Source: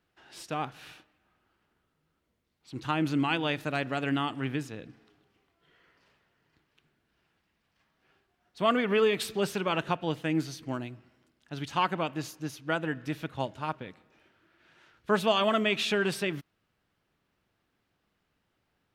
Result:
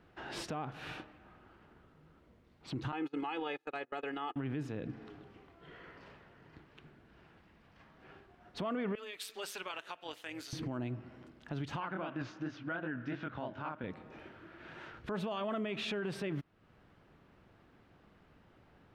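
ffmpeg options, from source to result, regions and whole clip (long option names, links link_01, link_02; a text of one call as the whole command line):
ffmpeg -i in.wav -filter_complex "[0:a]asettb=1/sr,asplit=3[link_01][link_02][link_03];[link_01]atrim=end=2.924[link_04];[link_02]atrim=start=2.92:end=4.36,asetpts=PTS-STARTPTS,afade=type=in:duration=0.004:curve=qsin,afade=type=out:start_time=1.436:duration=0.004:curve=qsin,highpass=400,aecho=1:1:2.4:0.94,atrim=end_sample=63504,agate=range=-33dB:threshold=-33dB:ratio=16:release=100:detection=peak[link_05];[link_03]atrim=start=4.356[link_06];[link_04][link_05]acrossfade=duration=0.004:curve1=hsin:curve2=qsin[link_07];[link_07][link_06]acrossfade=duration=0.004:curve1=qsin:curve2=hsin,asettb=1/sr,asplit=3[link_08][link_09][link_10];[link_08]atrim=end=8.954[link_11];[link_09]atrim=start=8.95:end=10.53,asetpts=PTS-STARTPTS,afade=type=in:duration=0.004:curve=qsin,afade=type=out:start_time=1.576:duration=0.004:curve=qsin,highpass=260,aderivative,tremolo=f=200:d=0.519[link_12];[link_10]atrim=start=10.526[link_13];[link_11][link_12]acrossfade=duration=0.004:curve1=hsin:curve2=qsin[link_14];[link_14][link_13]acrossfade=duration=0.004:curve1=qsin:curve2=hsin,asettb=1/sr,asplit=3[link_15][link_16][link_17];[link_15]atrim=end=11.804[link_18];[link_16]atrim=start=11.8:end=13.84,asetpts=PTS-STARTPTS,afade=type=in:duration=0.004:curve=qsin,afade=type=out:start_time=2.036:duration=0.004:curve=qsin,highpass=110,equalizer=frequency=150:width_type=q:width=4:gain=-6,equalizer=frequency=440:width_type=q:width=4:gain=-7,equalizer=frequency=840:width_type=q:width=4:gain=-3,equalizer=frequency=1500:width_type=q:width=4:gain=8,equalizer=frequency=4200:width_type=q:width=4:gain=-4,lowpass=frequency=5300:width=0.5412,lowpass=frequency=5300:width=1.3066,flanger=delay=19.5:depth=7.1:speed=2.8[link_19];[link_17]atrim=start=13.836[link_20];[link_18][link_19]acrossfade=duration=0.004:curve1=hsin:curve2=qsin[link_21];[link_21][link_20]acrossfade=duration=0.004:curve1=qsin:curve2=hsin,lowpass=frequency=1200:poles=1,acompressor=threshold=-54dB:ratio=2,alimiter=level_in=20.5dB:limit=-24dB:level=0:latency=1:release=52,volume=-20.5dB,volume=15dB" out.wav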